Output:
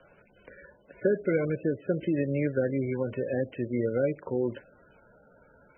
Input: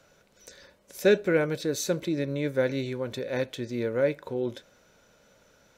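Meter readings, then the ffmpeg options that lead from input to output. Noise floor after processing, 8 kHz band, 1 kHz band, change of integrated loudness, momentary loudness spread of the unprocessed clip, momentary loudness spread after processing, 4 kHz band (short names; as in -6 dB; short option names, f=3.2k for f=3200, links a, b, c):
-61 dBFS, under -40 dB, -5.0 dB, -1.5 dB, 9 LU, 4 LU, under -15 dB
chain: -filter_complex "[0:a]acrossover=split=85|520|2300[a][b][c][d];[a]acompressor=threshold=-57dB:ratio=4[e];[b]acompressor=threshold=-27dB:ratio=4[f];[c]acompressor=threshold=-40dB:ratio=4[g];[d]acompressor=threshold=-46dB:ratio=4[h];[e][f][g][h]amix=inputs=4:normalize=0,volume=3.5dB" -ar 22050 -c:a libmp3lame -b:a 8k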